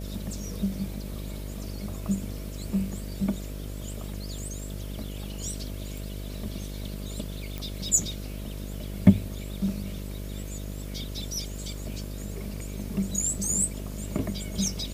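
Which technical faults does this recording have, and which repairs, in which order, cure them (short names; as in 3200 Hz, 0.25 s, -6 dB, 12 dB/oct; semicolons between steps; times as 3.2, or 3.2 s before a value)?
buzz 50 Hz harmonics 13 -36 dBFS
7.58 pop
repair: de-click; de-hum 50 Hz, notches 13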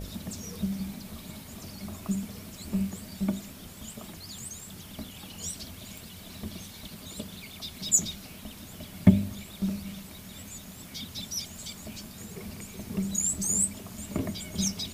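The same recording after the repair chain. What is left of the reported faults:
none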